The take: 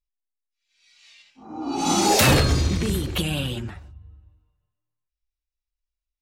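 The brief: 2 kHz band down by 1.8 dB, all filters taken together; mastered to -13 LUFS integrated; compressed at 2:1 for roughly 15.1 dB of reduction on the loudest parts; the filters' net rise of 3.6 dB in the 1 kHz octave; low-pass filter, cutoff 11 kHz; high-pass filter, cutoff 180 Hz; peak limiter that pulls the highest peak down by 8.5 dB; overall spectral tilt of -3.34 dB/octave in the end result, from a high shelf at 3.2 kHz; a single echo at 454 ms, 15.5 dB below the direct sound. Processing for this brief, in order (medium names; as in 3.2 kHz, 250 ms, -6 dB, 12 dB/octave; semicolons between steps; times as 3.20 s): high-pass 180 Hz; low-pass 11 kHz; peaking EQ 1 kHz +5.5 dB; peaking EQ 2 kHz -6.5 dB; treble shelf 3.2 kHz +6 dB; compression 2:1, threshold -41 dBFS; peak limiter -27.5 dBFS; delay 454 ms -15.5 dB; trim +24.5 dB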